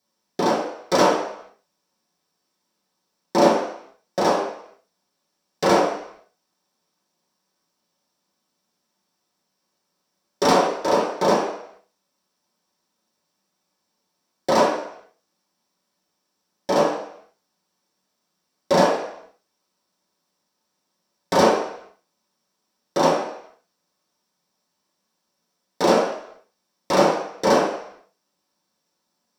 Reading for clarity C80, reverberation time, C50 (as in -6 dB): 6.5 dB, 0.70 s, 4.0 dB